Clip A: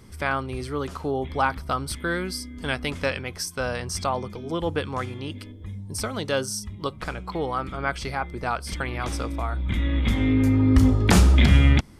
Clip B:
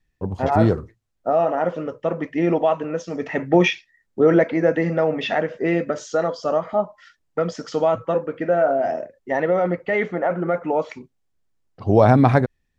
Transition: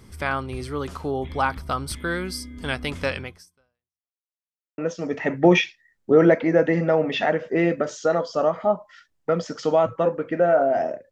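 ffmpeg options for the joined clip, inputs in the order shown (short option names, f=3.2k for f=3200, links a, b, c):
-filter_complex "[0:a]apad=whole_dur=11.11,atrim=end=11.11,asplit=2[a][b];[a]atrim=end=4.2,asetpts=PTS-STARTPTS,afade=t=out:st=3.24:d=0.96:c=exp[c];[b]atrim=start=4.2:end=4.78,asetpts=PTS-STARTPTS,volume=0[d];[1:a]atrim=start=2.87:end=9.2,asetpts=PTS-STARTPTS,afade=t=in:d=0.004:c=hsin[e];[c][d][e]concat=n=3:v=0:a=1"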